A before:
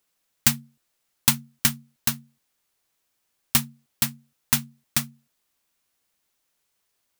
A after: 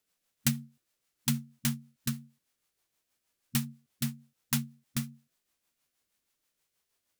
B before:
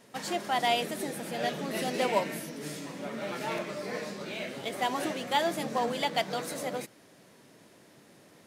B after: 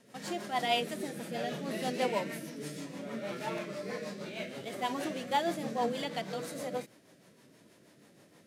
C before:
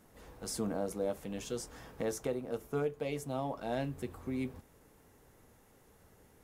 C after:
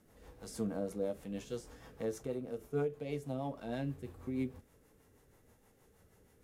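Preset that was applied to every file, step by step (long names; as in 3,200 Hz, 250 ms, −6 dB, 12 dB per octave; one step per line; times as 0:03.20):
harmonic and percussive parts rebalanced harmonic +9 dB
rotating-speaker cabinet horn 6.3 Hz
level −7.5 dB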